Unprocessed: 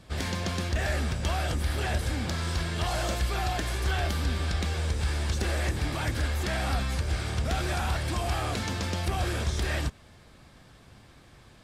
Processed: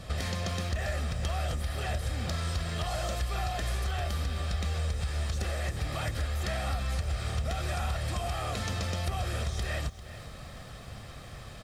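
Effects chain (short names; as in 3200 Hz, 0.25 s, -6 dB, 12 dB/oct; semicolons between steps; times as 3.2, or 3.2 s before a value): comb 1.6 ms, depth 48%; compressor 4:1, threshold -39 dBFS, peak gain reduction 15.5 dB; lo-fi delay 0.396 s, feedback 35%, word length 10-bit, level -14.5 dB; gain +7.5 dB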